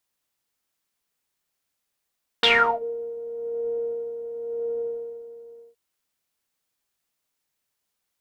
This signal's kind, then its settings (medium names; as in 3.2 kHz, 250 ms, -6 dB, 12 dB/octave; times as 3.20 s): synth patch with tremolo A#4, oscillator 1 saw, interval +7 st, oscillator 2 level -6.5 dB, sub -19 dB, noise -0.5 dB, filter lowpass, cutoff 470 Hz, Q 9.9, filter envelope 3 oct, filter decay 0.39 s, filter sustain 0%, attack 2.3 ms, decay 0.36 s, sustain -24 dB, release 1.04 s, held 2.28 s, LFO 0.96 Hz, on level 7 dB